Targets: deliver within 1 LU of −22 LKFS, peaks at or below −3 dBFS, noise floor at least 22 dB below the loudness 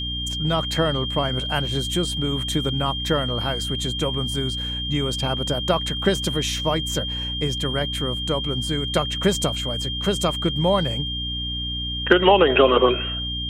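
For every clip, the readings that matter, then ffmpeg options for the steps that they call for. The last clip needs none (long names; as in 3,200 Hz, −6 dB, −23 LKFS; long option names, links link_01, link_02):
mains hum 60 Hz; hum harmonics up to 300 Hz; level of the hum −29 dBFS; interfering tone 3,200 Hz; level of the tone −27 dBFS; integrated loudness −22.0 LKFS; sample peak −2.5 dBFS; target loudness −22.0 LKFS
→ -af "bandreject=frequency=60:width_type=h:width=6,bandreject=frequency=120:width_type=h:width=6,bandreject=frequency=180:width_type=h:width=6,bandreject=frequency=240:width_type=h:width=6,bandreject=frequency=300:width_type=h:width=6"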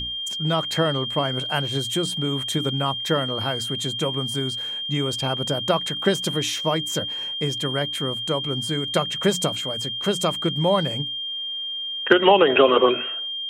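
mains hum none found; interfering tone 3,200 Hz; level of the tone −27 dBFS
→ -af "bandreject=frequency=3200:width=30"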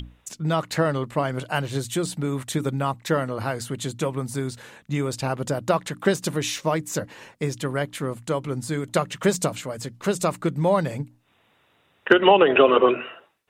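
interfering tone none found; integrated loudness −24.0 LKFS; sample peak −3.0 dBFS; target loudness −22.0 LKFS
→ -af "volume=2dB,alimiter=limit=-3dB:level=0:latency=1"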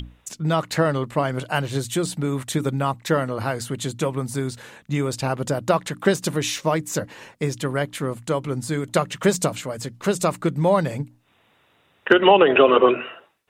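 integrated loudness −22.0 LKFS; sample peak −3.0 dBFS; background noise floor −62 dBFS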